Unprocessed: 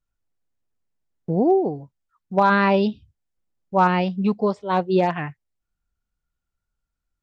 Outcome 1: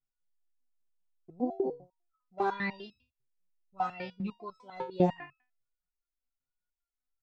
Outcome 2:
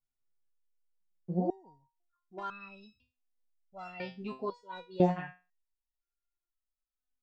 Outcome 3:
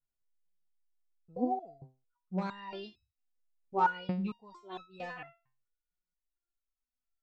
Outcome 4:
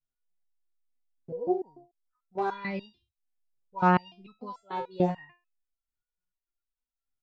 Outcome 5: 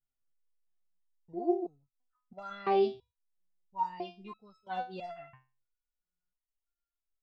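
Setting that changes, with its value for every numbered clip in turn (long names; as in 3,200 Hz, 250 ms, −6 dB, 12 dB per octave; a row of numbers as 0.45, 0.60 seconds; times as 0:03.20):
step-sequenced resonator, speed: 10, 2, 4.4, 6.8, 3 Hertz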